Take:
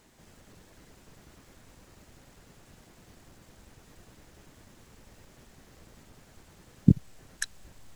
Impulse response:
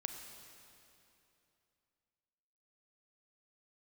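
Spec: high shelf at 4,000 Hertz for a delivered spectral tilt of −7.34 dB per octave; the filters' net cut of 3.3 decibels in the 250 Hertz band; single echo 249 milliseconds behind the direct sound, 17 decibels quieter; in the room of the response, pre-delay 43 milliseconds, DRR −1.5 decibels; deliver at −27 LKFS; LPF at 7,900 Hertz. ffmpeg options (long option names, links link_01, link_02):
-filter_complex "[0:a]lowpass=7900,equalizer=frequency=250:width_type=o:gain=-5,highshelf=frequency=4000:gain=-4.5,aecho=1:1:249:0.141,asplit=2[link_01][link_02];[1:a]atrim=start_sample=2205,adelay=43[link_03];[link_02][link_03]afir=irnorm=-1:irlink=0,volume=2.5dB[link_04];[link_01][link_04]amix=inputs=2:normalize=0,volume=0.5dB"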